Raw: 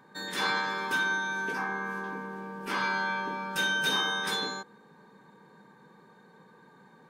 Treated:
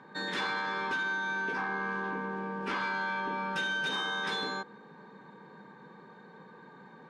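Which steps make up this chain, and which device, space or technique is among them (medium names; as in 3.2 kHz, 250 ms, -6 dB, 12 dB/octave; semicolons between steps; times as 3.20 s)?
AM radio (band-pass 120–3900 Hz; compression 4:1, threshold -34 dBFS, peak gain reduction 8 dB; saturation -28.5 dBFS, distortion -22 dB); trim +4.5 dB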